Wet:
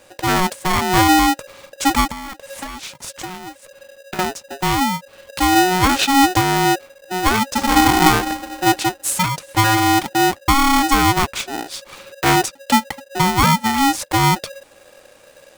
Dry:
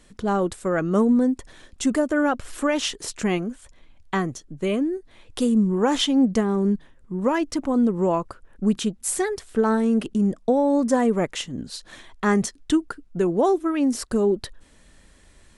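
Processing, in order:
0:02.10–0:04.19: downward compressor 12 to 1, threshold −33 dBFS, peak gain reduction 16.5 dB
0:07.46–0:07.86: thrown reverb, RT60 1.8 s, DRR −1.5 dB
ring modulator with a square carrier 550 Hz
level +5 dB

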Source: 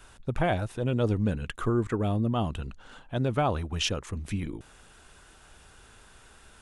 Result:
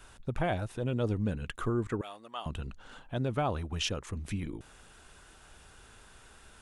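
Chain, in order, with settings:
0:02.01–0:02.46: high-pass filter 1,100 Hz 12 dB per octave
in parallel at −3 dB: downward compressor, threshold −35 dBFS, peak gain reduction 14 dB
on the sum: level −6 dB

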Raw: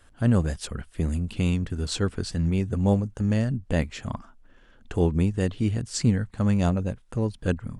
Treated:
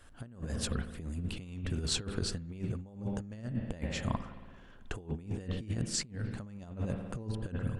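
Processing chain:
spring reverb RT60 1.7 s, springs 55 ms, chirp 45 ms, DRR 12 dB
compressor whose output falls as the input rises −29 dBFS, ratio −0.5
level −6.5 dB

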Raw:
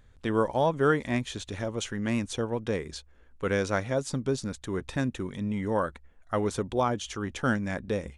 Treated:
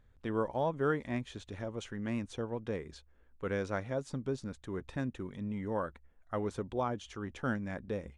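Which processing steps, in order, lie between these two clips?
high-shelf EQ 3,600 Hz −10 dB
level −7 dB

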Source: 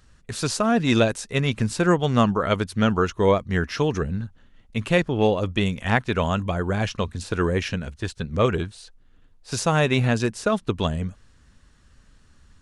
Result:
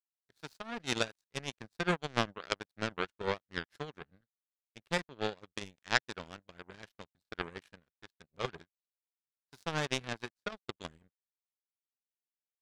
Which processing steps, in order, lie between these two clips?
graphic EQ with 15 bands 160 Hz +7 dB, 400 Hz +7 dB, 1,600 Hz +11 dB, 4,000 Hz +10 dB
power curve on the samples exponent 3
level −6 dB

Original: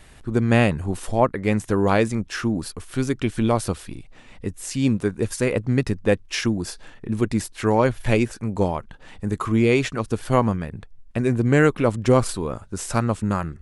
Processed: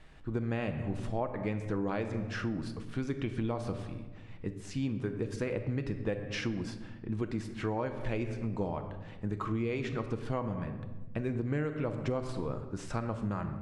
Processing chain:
high-shelf EQ 7,300 Hz −11 dB
rectangular room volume 640 cubic metres, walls mixed, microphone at 0.59 metres
downward compressor 6 to 1, threshold −21 dBFS, peak gain reduction 12 dB
high-frequency loss of the air 61 metres
level −8 dB

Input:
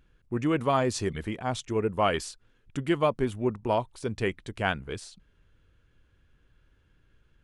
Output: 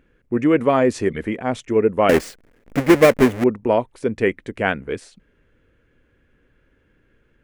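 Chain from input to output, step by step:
0:02.09–0:03.44: each half-wave held at its own peak
octave-band graphic EQ 250/500/2,000/4,000 Hz +9/+10/+10/−4 dB

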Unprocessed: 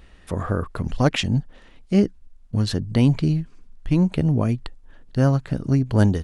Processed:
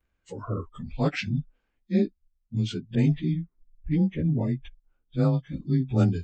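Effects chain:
partials spread apart or drawn together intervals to 92%
noise reduction from a noise print of the clip's start 19 dB
0:02.95–0:04.65: low-pass that shuts in the quiet parts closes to 600 Hz, open at −13.5 dBFS
level −4 dB

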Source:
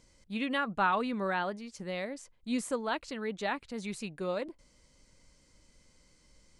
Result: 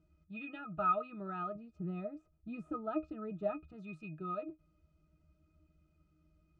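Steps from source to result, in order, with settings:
0:01.55–0:03.70: tilt shelving filter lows +7 dB, about 1,200 Hz
resonances in every octave D#, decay 0.13 s
hollow resonant body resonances 1,300/3,600 Hz, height 12 dB, ringing for 65 ms
level +4.5 dB

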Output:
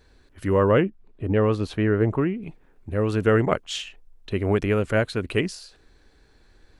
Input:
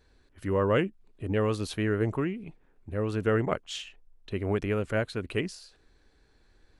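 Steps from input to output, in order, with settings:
0:00.71–0:02.43: low-pass filter 1,800 Hz 6 dB per octave
level +6.5 dB

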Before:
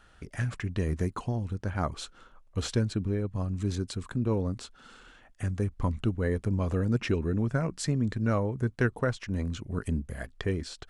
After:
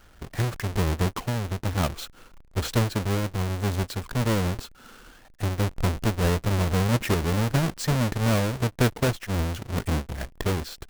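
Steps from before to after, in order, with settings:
each half-wave held at its own peak

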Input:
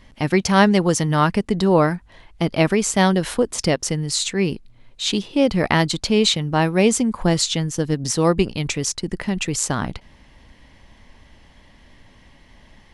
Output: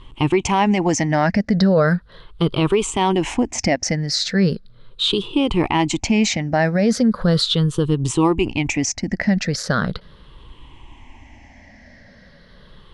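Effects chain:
rippled gain that drifts along the octave scale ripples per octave 0.65, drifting −0.38 Hz, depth 15 dB
brickwall limiter −10 dBFS, peak gain reduction 9.5 dB
high-frequency loss of the air 77 metres
level +2.5 dB

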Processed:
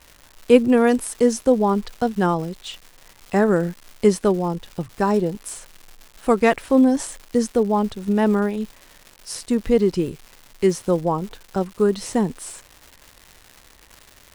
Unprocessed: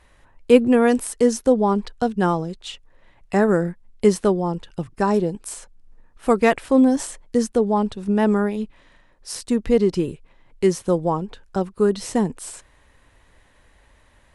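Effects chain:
surface crackle 330 per second −33 dBFS

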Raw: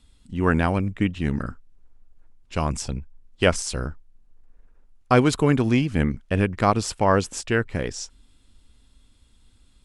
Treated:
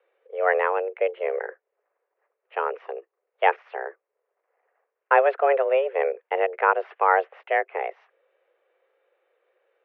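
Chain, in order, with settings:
single-sideband voice off tune +270 Hz 160–2,200 Hz

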